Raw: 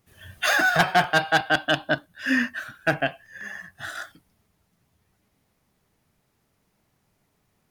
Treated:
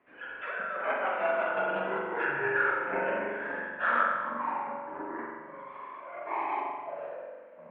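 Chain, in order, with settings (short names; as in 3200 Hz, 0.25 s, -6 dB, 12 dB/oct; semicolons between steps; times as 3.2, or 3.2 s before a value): limiter -14 dBFS, peak gain reduction 4 dB; negative-ratio compressor -33 dBFS, ratio -1; 3.23–3.71 tube stage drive 38 dB, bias 0.65; echoes that change speed 0.57 s, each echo -7 st, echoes 2, each echo -6 dB; mistuned SSB -120 Hz 400–2500 Hz; spring tank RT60 1.3 s, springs 42 ms, chirp 70 ms, DRR -1 dB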